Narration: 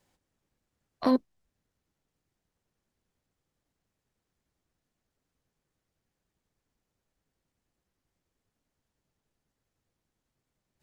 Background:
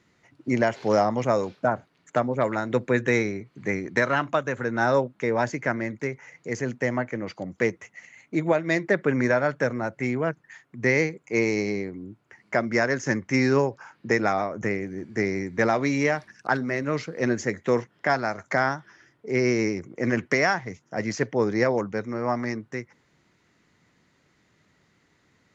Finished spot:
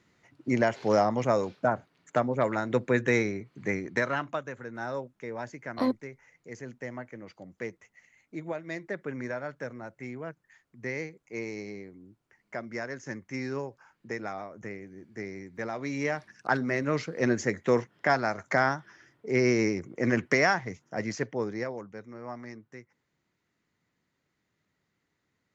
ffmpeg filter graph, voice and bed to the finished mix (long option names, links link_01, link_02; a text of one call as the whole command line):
ffmpeg -i stem1.wav -i stem2.wav -filter_complex "[0:a]adelay=4750,volume=-3dB[link_01];[1:a]volume=9dB,afade=type=out:start_time=3.63:duration=0.99:silence=0.298538,afade=type=in:start_time=15.71:duration=0.95:silence=0.266073,afade=type=out:start_time=20.66:duration=1.09:silence=0.237137[link_02];[link_01][link_02]amix=inputs=2:normalize=0" out.wav